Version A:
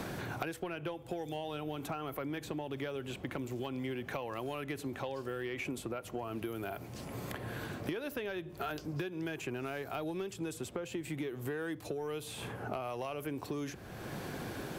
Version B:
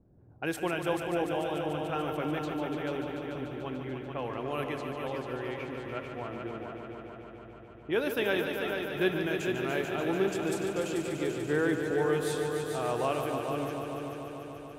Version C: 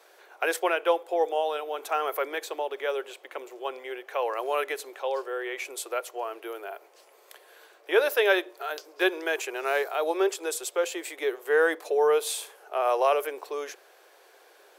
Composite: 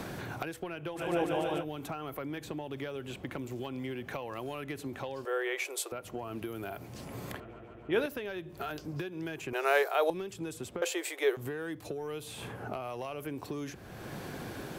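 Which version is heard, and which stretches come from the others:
A
0.98–1.62 from B, crossfade 0.06 s
5.25–5.92 from C
7.4–8.06 from B
9.53–10.1 from C
10.82–11.37 from C

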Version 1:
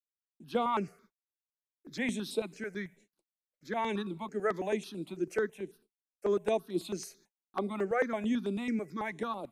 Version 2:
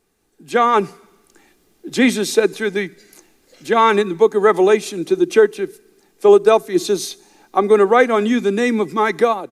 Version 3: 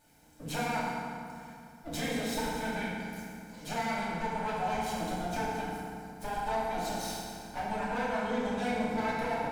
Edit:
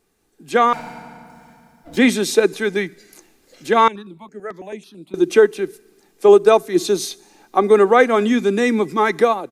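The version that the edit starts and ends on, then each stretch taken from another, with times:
2
0.73–1.97 from 3
3.88–5.14 from 1

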